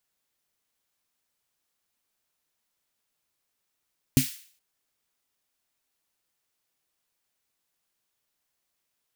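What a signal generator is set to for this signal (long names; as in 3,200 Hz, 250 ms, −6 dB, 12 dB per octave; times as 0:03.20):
synth snare length 0.42 s, tones 140 Hz, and 260 Hz, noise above 2,000 Hz, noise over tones −10 dB, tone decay 0.13 s, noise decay 0.50 s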